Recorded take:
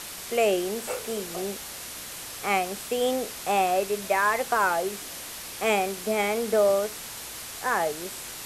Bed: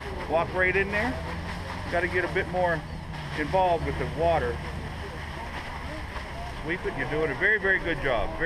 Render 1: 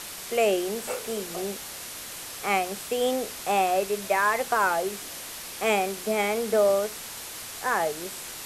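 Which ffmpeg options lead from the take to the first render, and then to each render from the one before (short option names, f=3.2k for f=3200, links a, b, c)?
-af "bandreject=f=60:t=h:w=4,bandreject=f=120:t=h:w=4,bandreject=f=180:t=h:w=4,bandreject=f=240:t=h:w=4,bandreject=f=300:t=h:w=4"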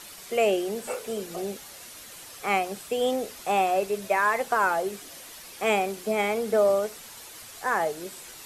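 -af "afftdn=nr=8:nf=-39"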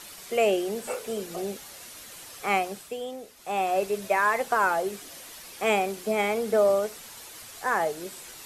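-filter_complex "[0:a]asplit=3[a][b][c];[a]atrim=end=3.06,asetpts=PTS-STARTPTS,afade=t=out:st=2.61:d=0.45:silence=0.281838[d];[b]atrim=start=3.06:end=3.36,asetpts=PTS-STARTPTS,volume=-11dB[e];[c]atrim=start=3.36,asetpts=PTS-STARTPTS,afade=t=in:d=0.45:silence=0.281838[f];[d][e][f]concat=n=3:v=0:a=1"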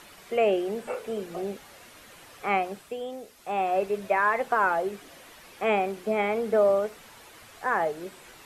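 -filter_complex "[0:a]acrossover=split=3000[a][b];[b]acompressor=threshold=-54dB:ratio=4:attack=1:release=60[c];[a][c]amix=inputs=2:normalize=0"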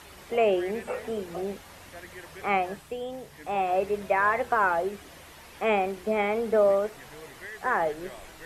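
-filter_complex "[1:a]volume=-19dB[a];[0:a][a]amix=inputs=2:normalize=0"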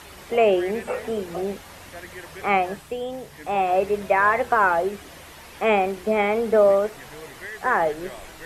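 -af "volume=5dB"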